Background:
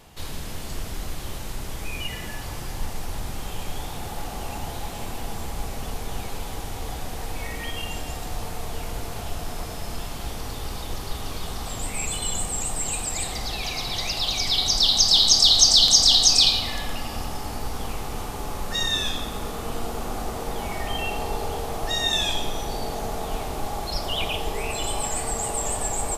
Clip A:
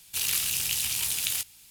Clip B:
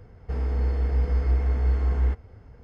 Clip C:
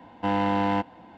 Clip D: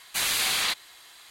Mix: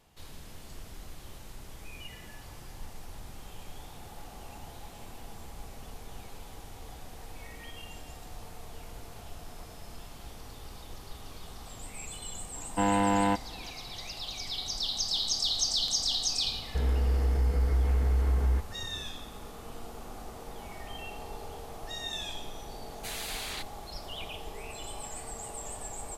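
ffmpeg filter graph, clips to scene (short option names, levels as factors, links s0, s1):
-filter_complex "[0:a]volume=0.211[s0];[2:a]alimiter=limit=0.106:level=0:latency=1:release=71[s1];[3:a]atrim=end=1.17,asetpts=PTS-STARTPTS,volume=0.841,afade=t=in:d=0.004:c=hsin,afade=t=out:st=1.166:d=0.004:c=hsin,adelay=12540[s2];[s1]atrim=end=2.63,asetpts=PTS-STARTPTS,volume=0.944,afade=t=in:d=0.004:c=hsin,afade=t=out:st=2.626:d=0.004:c=hsin,adelay=16460[s3];[4:a]atrim=end=1.3,asetpts=PTS-STARTPTS,volume=0.224,afade=t=in:d=0.004:c=hsin,afade=t=out:st=1.296:d=0.004:c=hsin,adelay=22890[s4];[s0][s2][s3][s4]amix=inputs=4:normalize=0"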